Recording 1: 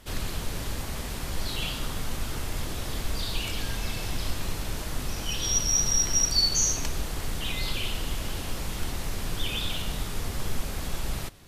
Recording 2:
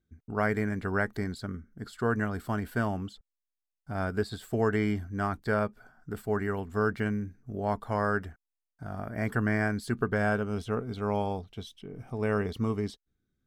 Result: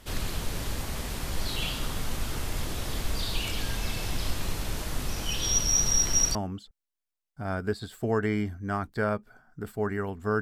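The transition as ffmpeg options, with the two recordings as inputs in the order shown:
-filter_complex "[0:a]apad=whole_dur=10.41,atrim=end=10.41,atrim=end=6.352[s0];[1:a]atrim=start=2.848:end=6.91[s1];[s0][s1]acrossfade=d=0.004:c1=hsin:c2=hsin"

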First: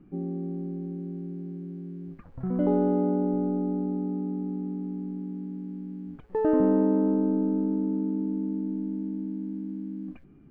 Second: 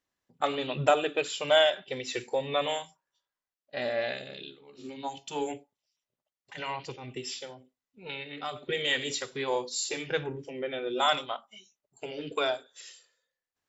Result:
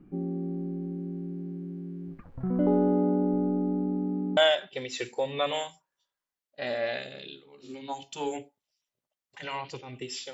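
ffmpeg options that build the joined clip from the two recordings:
-filter_complex "[0:a]apad=whole_dur=10.33,atrim=end=10.33,atrim=end=4.372[s0];[1:a]atrim=start=1.518:end=7.48[s1];[s0][s1]acrossfade=d=0.004:c1=hsin:c2=hsin"

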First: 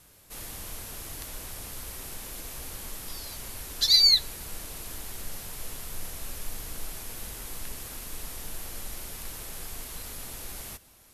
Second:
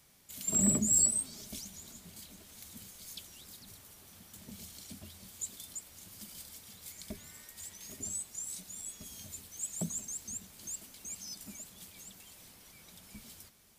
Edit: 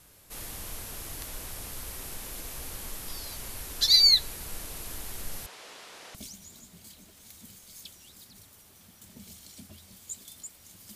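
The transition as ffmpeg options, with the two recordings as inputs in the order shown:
-filter_complex "[0:a]asettb=1/sr,asplit=3[s0][s1][s2];[s0]atrim=end=5.464[s3];[s1]atrim=start=5.46:end=6.15,asetpts=PTS-STARTPTS,afade=t=in:d=0.004:c=qsin,afade=t=out:st=0.686:d=0.004:c=qsin,highpass=430,lowpass=4900[s4];[s2]atrim=start=6.146[s5];[s3][s4]acrossfade=d=0.004:c1=hsin:c2=qsin[s6];[s6][s5]acrossfade=d=0.004:c1=qsin:c2=hsin,apad=whole_dur=10.95,atrim=end=10.95,atrim=end=6.152[s7];[1:a]atrim=start=1.468:end=6.27[s8];[s7][s8]acrossfade=d=0.004:c1=hsin:c2=hsin"

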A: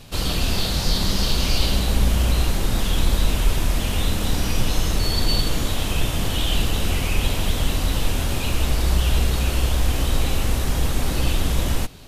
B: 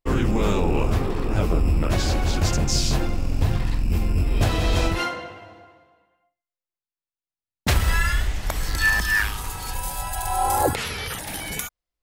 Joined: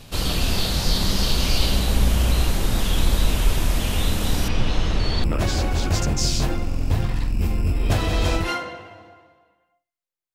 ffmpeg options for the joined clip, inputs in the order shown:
-filter_complex "[0:a]asettb=1/sr,asplit=3[s0][s1][s2];[s0]atrim=end=4.484[s3];[s1]atrim=start=4.48:end=5.24,asetpts=PTS-STARTPTS,afade=t=in:d=0.004:c=qsin,afade=t=out:st=0.756:d=0.004:c=qsin,lowpass=3900[s4];[s2]atrim=start=5.236[s5];[s3][s4]acrossfade=d=0.004:c1=hsin:c2=qsin[s6];[s6][s5]acrossfade=d=0.004:c1=qsin:c2=hsin,apad=whole_dur=10.34,atrim=end=10.34,atrim=end=5.242[s7];[1:a]atrim=start=1.748:end=6.85[s8];[s7][s8]acrossfade=d=0.004:c1=hsin:c2=hsin"

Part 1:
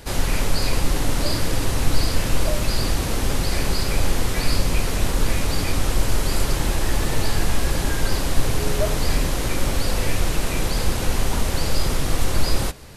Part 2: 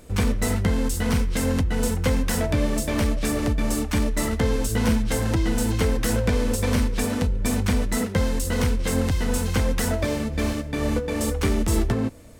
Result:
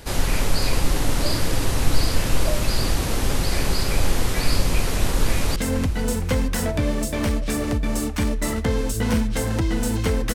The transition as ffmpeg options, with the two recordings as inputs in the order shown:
-filter_complex "[0:a]apad=whole_dur=10.34,atrim=end=10.34,atrim=end=5.562[s0];[1:a]atrim=start=1.308:end=6.09[s1];[s0][s1]acrossfade=d=0.004:c1=hsin:c2=hsin,asplit=2[s2][s3];[s3]afade=t=in:st=5.26:d=0.01,afade=t=out:st=5.56:d=0.01,aecho=0:1:460|920|1380|1840|2300|2760:0.211349|0.126809|0.0760856|0.0456514|0.0273908|0.0164345[s4];[s2][s4]amix=inputs=2:normalize=0"

